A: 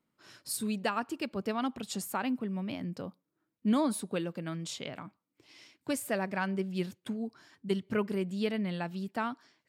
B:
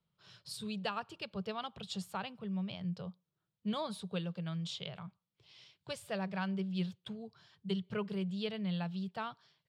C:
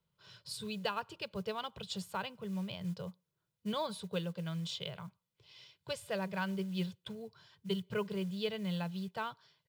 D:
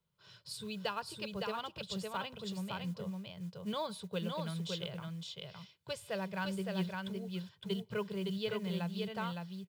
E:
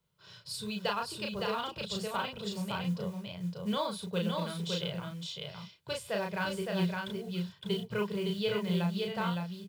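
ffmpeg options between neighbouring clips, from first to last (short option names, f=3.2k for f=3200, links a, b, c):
-filter_complex "[0:a]firequalizer=gain_entry='entry(180,0);entry(260,-28);entry(400,-10);entry(1200,-9);entry(2000,-13);entry(3300,-1);entry(6500,-14);entry(13000,-23)':delay=0.05:min_phase=1,acrossover=split=140|6200[a][b][c];[a]acompressor=threshold=-59dB:ratio=6[d];[d][b][c]amix=inputs=3:normalize=0,volume=3.5dB"
-af "acrusher=bits=7:mode=log:mix=0:aa=0.000001,aecho=1:1:2:0.38,volume=1dB"
-af "aecho=1:1:562:0.668,volume=-1.5dB"
-filter_complex "[0:a]asplit=2[a][b];[b]adelay=34,volume=-3dB[c];[a][c]amix=inputs=2:normalize=0,volume=3.5dB"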